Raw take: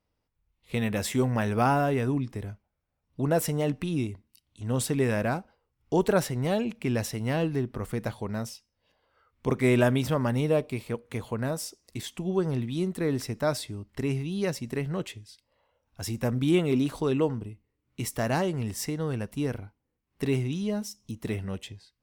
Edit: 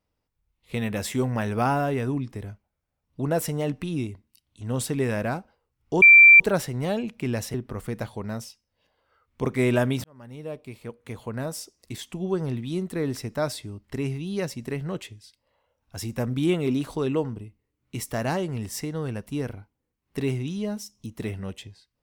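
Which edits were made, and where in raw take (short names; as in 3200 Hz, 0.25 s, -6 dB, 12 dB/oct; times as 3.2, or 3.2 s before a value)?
6.02 add tone 2350 Hz -7.5 dBFS 0.38 s
7.16–7.59 cut
10.09–11.66 fade in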